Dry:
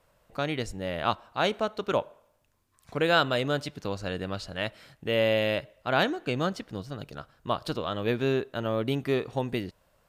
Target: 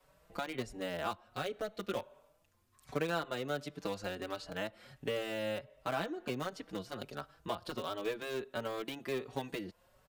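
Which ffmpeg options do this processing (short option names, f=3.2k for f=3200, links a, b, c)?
-filter_complex "[0:a]acrossover=split=190|1500[a][b][c];[a]acompressor=threshold=-50dB:ratio=4[d];[b]acompressor=threshold=-36dB:ratio=4[e];[c]acompressor=threshold=-47dB:ratio=4[f];[d][e][f]amix=inputs=3:normalize=0,adynamicequalizer=threshold=0.00158:dfrequency=100:dqfactor=0.94:tfrequency=100:tqfactor=0.94:attack=5:release=100:ratio=0.375:range=2.5:mode=cutabove:tftype=bell,asplit=2[g][h];[h]acrusher=bits=4:mix=0:aa=0.000001,volume=-12dB[i];[g][i]amix=inputs=2:normalize=0,asettb=1/sr,asplit=3[j][k][l];[j]atrim=end=1.244[m];[k]atrim=start=1.24:end=1.97,asetpts=PTS-STARTPTS,afade=t=in:d=0.004:c=qsin,afade=t=out:st=0.726:d=0.004:c=qsin,equalizer=f=950:w=3.5:g=-12[n];[l]atrim=start=1.966[o];[m][n]acrossfade=d=0.004:c1=hsin:c2=qsin[p];[p][o]acrossfade=d=0.004:c1=qsin:c2=hsin,asplit=2[q][r];[r]adelay=4.9,afreqshift=1.4[s];[q][s]amix=inputs=2:normalize=1,volume=2dB"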